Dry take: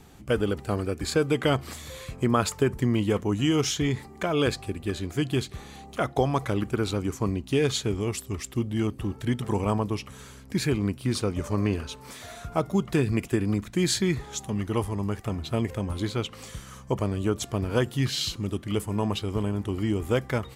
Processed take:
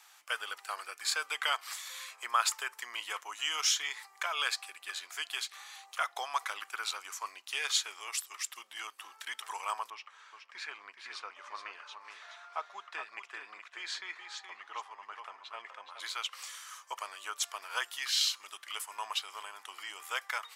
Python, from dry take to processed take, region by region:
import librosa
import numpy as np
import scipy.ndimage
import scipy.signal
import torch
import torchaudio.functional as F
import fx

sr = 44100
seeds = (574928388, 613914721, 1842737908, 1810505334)

y = fx.chain(x, sr, fx.spacing_loss(db_at_10k=27),
    fx.echo_single(ms=421, db=-7.5), at=(9.9, 16.0))
y = scipy.signal.sosfilt(scipy.signal.butter(4, 1000.0, 'highpass', fs=sr, output='sos'), y)
y = fx.peak_eq(y, sr, hz=5400.0, db=2.5, octaves=0.34)